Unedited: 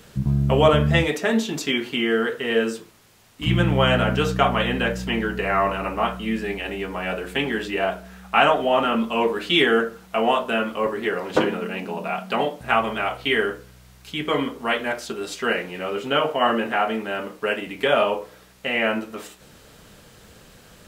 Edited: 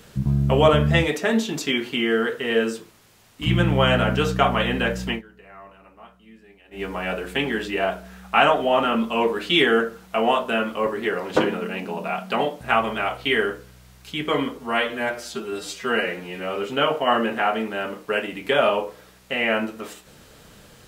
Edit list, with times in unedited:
5.10–6.83 s: dip -23.5 dB, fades 0.12 s
14.58–15.90 s: stretch 1.5×

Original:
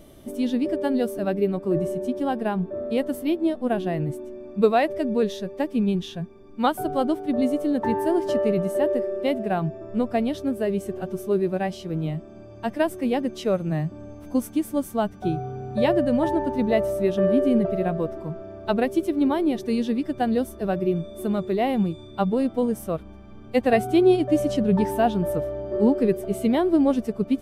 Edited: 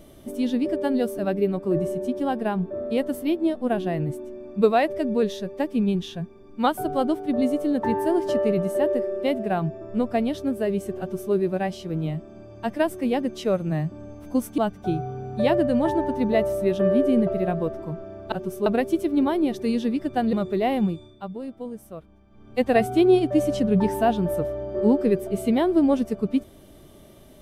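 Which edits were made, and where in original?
10.99–11.33 s: copy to 18.70 s
14.58–14.96 s: delete
20.37–21.30 s: delete
21.81–23.62 s: dip -11.5 dB, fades 0.35 s

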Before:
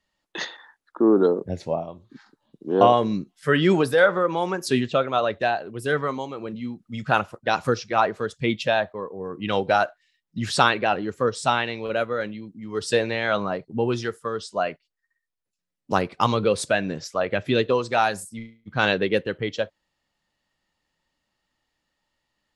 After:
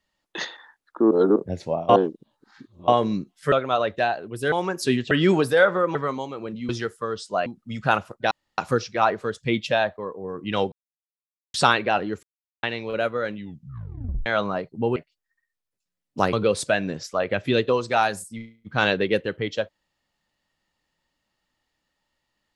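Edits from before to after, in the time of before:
1.11–1.36 s: reverse
1.89–2.88 s: reverse
3.52–4.36 s: swap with 4.95–5.95 s
7.54 s: insert room tone 0.27 s
9.68–10.50 s: mute
11.19–11.59 s: mute
12.31 s: tape stop 0.91 s
13.92–14.69 s: move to 6.69 s
16.06–16.34 s: delete

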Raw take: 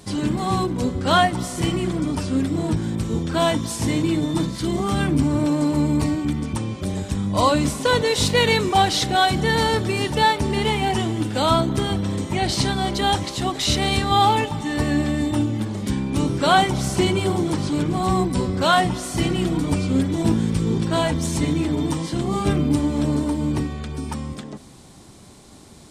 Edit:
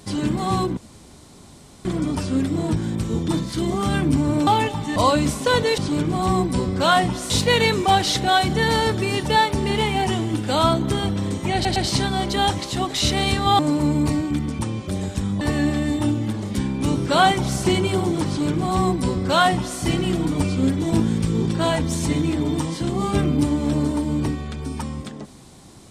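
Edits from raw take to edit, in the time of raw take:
0.77–1.85 s: room tone
3.28–4.34 s: delete
5.53–7.35 s: swap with 14.24–14.73 s
12.41 s: stutter 0.11 s, 3 plays
17.59–19.11 s: copy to 8.17 s

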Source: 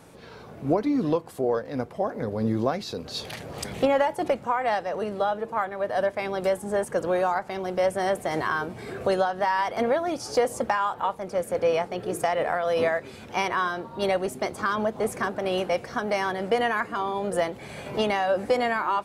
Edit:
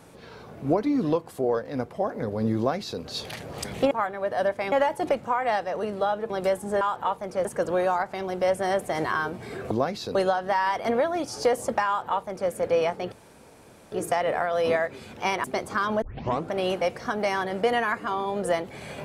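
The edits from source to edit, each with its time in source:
2.57–3.01 s: copy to 9.07 s
5.49–6.30 s: move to 3.91 s
10.79–11.43 s: copy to 6.81 s
12.04 s: insert room tone 0.80 s
13.56–14.32 s: delete
14.90 s: tape start 0.49 s

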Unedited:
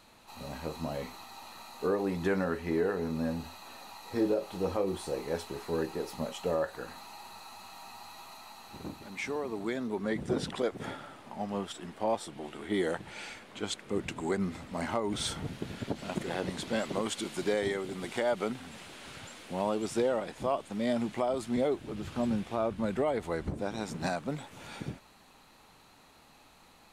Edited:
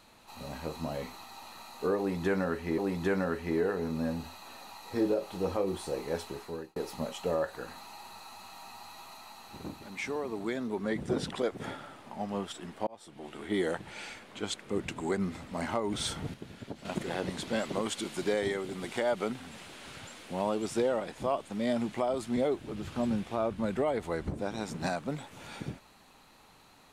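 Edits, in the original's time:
1.98–2.78 s: loop, 2 plays
5.49–5.96 s: fade out
12.07–12.59 s: fade in
15.54–16.05 s: gain -7 dB

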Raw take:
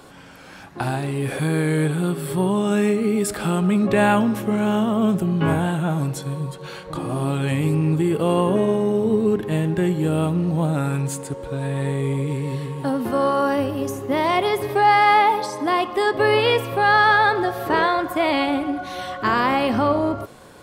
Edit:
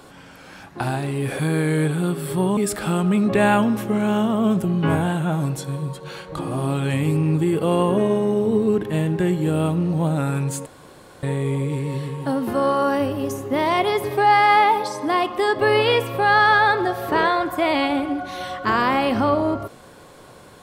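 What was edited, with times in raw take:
2.57–3.15 s: delete
11.24–11.81 s: room tone

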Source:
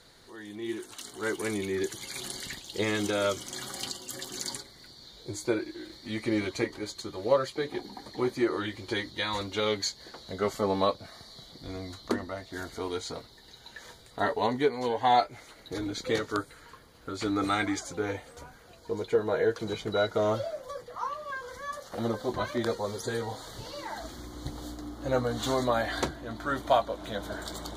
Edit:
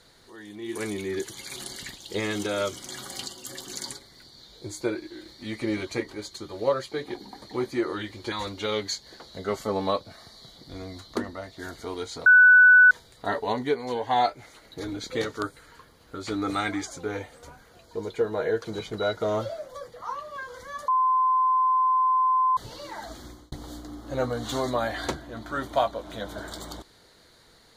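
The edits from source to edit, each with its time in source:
0.75–1.39 s: delete
8.96–9.26 s: delete
13.20–13.85 s: bleep 1.49 kHz -10.5 dBFS
21.82–23.51 s: bleep 1.03 kHz -18.5 dBFS
24.21–24.46 s: fade out

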